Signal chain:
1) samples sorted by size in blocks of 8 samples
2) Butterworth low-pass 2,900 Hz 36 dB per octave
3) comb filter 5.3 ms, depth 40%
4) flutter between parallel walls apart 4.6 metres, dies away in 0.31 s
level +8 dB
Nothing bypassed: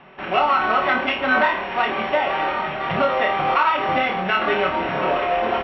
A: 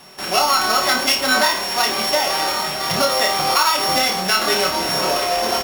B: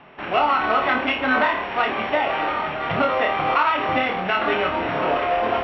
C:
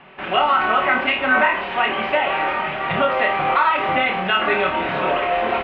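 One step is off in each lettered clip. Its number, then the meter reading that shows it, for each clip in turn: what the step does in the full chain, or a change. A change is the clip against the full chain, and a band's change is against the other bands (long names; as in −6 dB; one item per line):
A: 2, 4 kHz band +12.5 dB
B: 3, 250 Hz band +1.5 dB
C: 1, distortion level −2 dB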